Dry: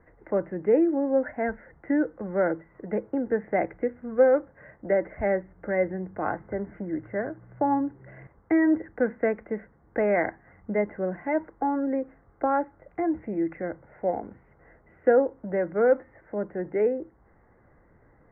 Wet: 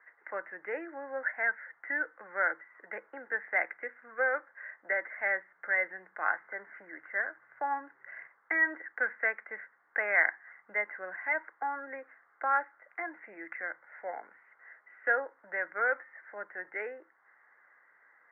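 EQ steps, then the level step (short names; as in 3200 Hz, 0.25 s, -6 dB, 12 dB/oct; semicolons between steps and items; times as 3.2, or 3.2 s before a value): resonant high-pass 1700 Hz, resonance Q 2.2; air absorption 170 m; high shelf 2400 Hz -10 dB; +6.0 dB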